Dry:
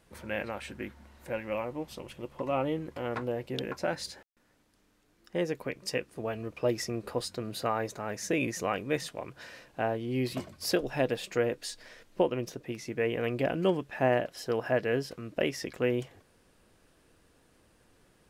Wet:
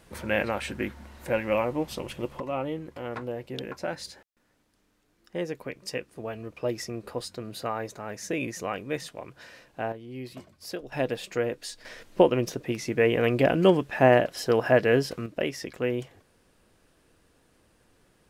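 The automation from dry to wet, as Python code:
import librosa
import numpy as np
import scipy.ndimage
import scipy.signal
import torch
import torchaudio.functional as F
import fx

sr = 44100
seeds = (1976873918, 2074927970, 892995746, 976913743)

y = fx.gain(x, sr, db=fx.steps((0.0, 8.0), (2.4, -1.0), (9.92, -8.0), (10.92, 0.5), (11.85, 7.5), (15.26, 0.5)))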